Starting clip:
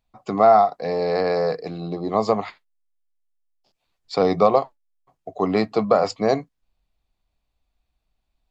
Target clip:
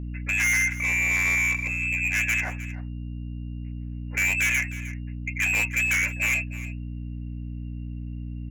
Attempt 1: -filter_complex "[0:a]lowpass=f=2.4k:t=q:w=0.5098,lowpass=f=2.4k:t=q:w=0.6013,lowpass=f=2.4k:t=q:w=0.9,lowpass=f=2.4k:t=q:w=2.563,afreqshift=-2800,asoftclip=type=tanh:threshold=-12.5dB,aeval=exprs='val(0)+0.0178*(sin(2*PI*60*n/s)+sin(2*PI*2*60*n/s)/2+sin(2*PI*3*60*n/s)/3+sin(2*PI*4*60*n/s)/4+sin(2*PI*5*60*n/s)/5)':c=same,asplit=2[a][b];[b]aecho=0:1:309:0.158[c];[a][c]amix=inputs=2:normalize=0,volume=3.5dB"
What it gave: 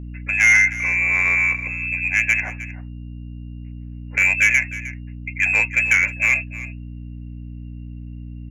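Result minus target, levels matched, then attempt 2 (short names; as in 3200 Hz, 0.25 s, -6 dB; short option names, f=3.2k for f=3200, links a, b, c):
soft clip: distortion -9 dB
-filter_complex "[0:a]lowpass=f=2.4k:t=q:w=0.5098,lowpass=f=2.4k:t=q:w=0.6013,lowpass=f=2.4k:t=q:w=0.9,lowpass=f=2.4k:t=q:w=2.563,afreqshift=-2800,asoftclip=type=tanh:threshold=-24.5dB,aeval=exprs='val(0)+0.0178*(sin(2*PI*60*n/s)+sin(2*PI*2*60*n/s)/2+sin(2*PI*3*60*n/s)/3+sin(2*PI*4*60*n/s)/4+sin(2*PI*5*60*n/s)/5)':c=same,asplit=2[a][b];[b]aecho=0:1:309:0.158[c];[a][c]amix=inputs=2:normalize=0,volume=3.5dB"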